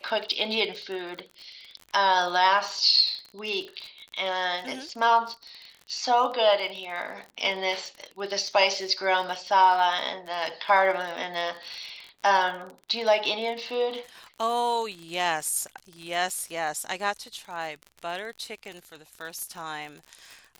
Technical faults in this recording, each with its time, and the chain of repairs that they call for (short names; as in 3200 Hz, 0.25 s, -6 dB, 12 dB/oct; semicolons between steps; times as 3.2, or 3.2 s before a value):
crackle 46/s -34 dBFS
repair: de-click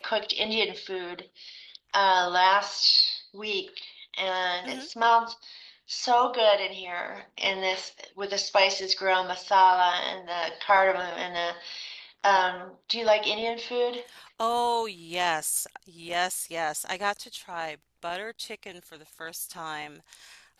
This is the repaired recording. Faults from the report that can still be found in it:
none